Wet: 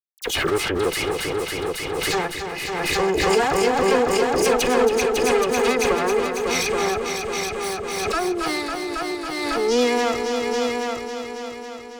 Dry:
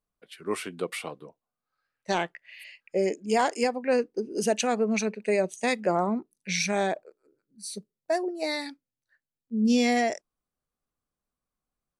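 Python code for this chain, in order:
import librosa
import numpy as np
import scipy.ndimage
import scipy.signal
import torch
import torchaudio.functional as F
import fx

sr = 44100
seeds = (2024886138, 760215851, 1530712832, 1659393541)

p1 = fx.lower_of_two(x, sr, delay_ms=2.4)
p2 = fx.highpass(p1, sr, hz=47.0, slope=6)
p3 = fx.high_shelf(p2, sr, hz=6300.0, db=-3.0)
p4 = fx.rider(p3, sr, range_db=10, speed_s=2.0)
p5 = p3 + (p4 * 10.0 ** (-1.5 / 20.0))
p6 = fx.quant_dither(p5, sr, seeds[0], bits=12, dither='none')
p7 = fx.dispersion(p6, sr, late='lows', ms=41.0, hz=2300.0)
p8 = p7 + fx.echo_heads(p7, sr, ms=275, heads='all three', feedback_pct=51, wet_db=-7.5, dry=0)
y = fx.pre_swell(p8, sr, db_per_s=23.0)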